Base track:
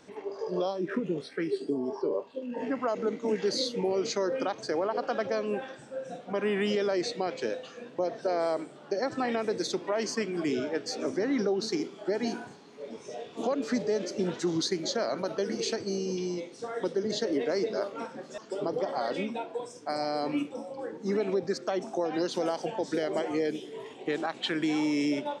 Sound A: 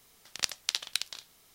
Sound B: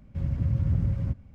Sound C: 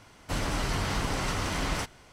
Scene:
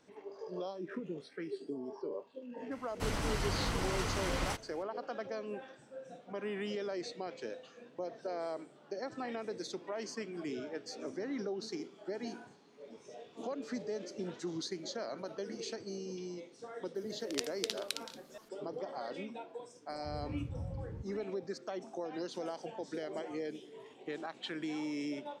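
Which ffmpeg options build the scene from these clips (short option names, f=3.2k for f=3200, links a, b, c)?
-filter_complex "[0:a]volume=-10.5dB[a];[1:a]aresample=32000,aresample=44100[b];[3:a]atrim=end=2.12,asetpts=PTS-STARTPTS,volume=-5.5dB,afade=t=in:d=0.004:c=hsin,afade=t=out:st=2.116:d=0.004:c=hsin,adelay=2710[c];[b]atrim=end=1.54,asetpts=PTS-STARTPTS,volume=-7.5dB,afade=t=in:d=0.004:c=hsin,afade=t=out:st=1.536:d=0.004:c=hsin,adelay=16950[d];[2:a]atrim=end=1.34,asetpts=PTS-STARTPTS,volume=-16.5dB,afade=t=in:d=0.004:c=hsin,afade=t=out:st=1.336:d=0.004:c=hsin,adelay=19900[e];[a][c][d][e]amix=inputs=4:normalize=0"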